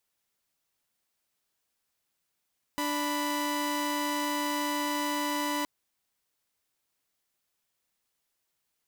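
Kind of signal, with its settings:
held notes D4/B5 saw, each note −28.5 dBFS 2.87 s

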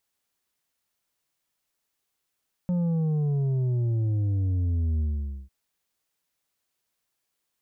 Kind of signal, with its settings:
bass drop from 180 Hz, over 2.80 s, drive 6 dB, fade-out 0.49 s, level −23 dB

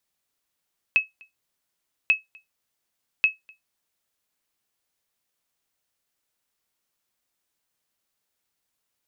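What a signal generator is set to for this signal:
ping with an echo 2,580 Hz, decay 0.16 s, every 1.14 s, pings 3, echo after 0.25 s, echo −29.5 dB −10 dBFS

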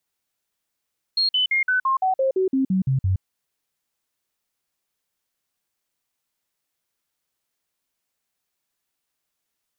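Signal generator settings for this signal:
stepped sweep 4,260 Hz down, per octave 2, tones 12, 0.12 s, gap 0.05 s −17 dBFS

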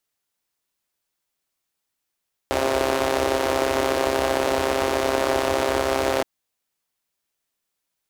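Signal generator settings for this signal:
pulse-train model of a four-cylinder engine, steady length 3.72 s, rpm 4,000, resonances 80/370/550 Hz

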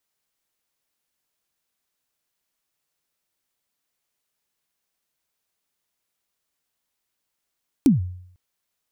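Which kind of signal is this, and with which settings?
synth kick length 0.50 s, from 310 Hz, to 90 Hz, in 143 ms, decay 0.67 s, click on, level −9 dB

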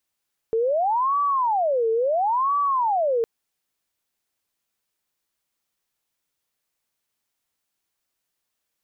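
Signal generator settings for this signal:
siren wail 447–1,150 Hz 0.73 per second sine −18.5 dBFS 2.71 s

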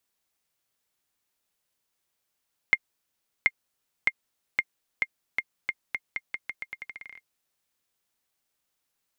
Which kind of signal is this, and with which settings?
bouncing ball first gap 0.73 s, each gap 0.84, 2,120 Hz, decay 47 ms −6.5 dBFS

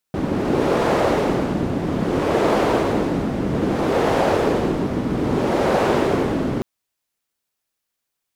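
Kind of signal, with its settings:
wind from filtered noise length 6.48 s, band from 240 Hz, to 520 Hz, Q 1.2, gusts 4, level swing 4.5 dB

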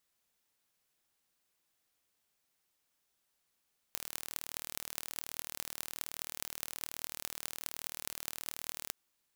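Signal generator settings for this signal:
impulse train 38.8 per second, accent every 8, −8 dBFS 4.96 s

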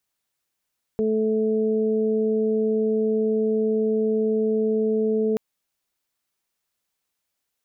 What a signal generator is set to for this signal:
steady harmonic partials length 4.38 s, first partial 218 Hz, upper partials 3/−15 dB, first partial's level −23.5 dB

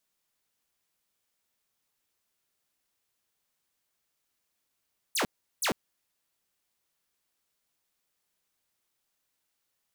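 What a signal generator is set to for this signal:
repeated falling chirps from 12,000 Hz, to 160 Hz, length 0.10 s saw, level −22.5 dB, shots 2, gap 0.37 s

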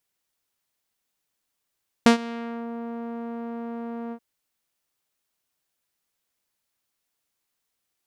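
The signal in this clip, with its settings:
subtractive voice saw A#3 12 dB per octave, low-pass 980 Hz, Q 0.77, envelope 3 octaves, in 0.61 s, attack 1.3 ms, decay 0.11 s, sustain −21 dB, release 0.07 s, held 2.06 s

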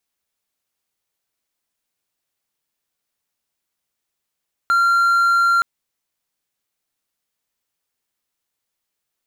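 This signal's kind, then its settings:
tone triangle 1,380 Hz −10.5 dBFS 0.92 s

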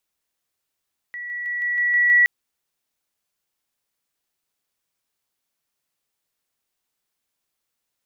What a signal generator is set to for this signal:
level staircase 1,940 Hz −29.5 dBFS, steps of 3 dB, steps 7, 0.16 s 0.00 s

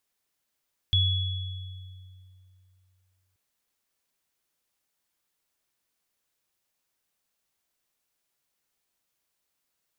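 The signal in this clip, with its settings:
inharmonic partials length 2.43 s, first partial 92.9 Hz, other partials 3,380 Hz, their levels −0.5 dB, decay 2.74 s, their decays 1.67 s, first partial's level −20.5 dB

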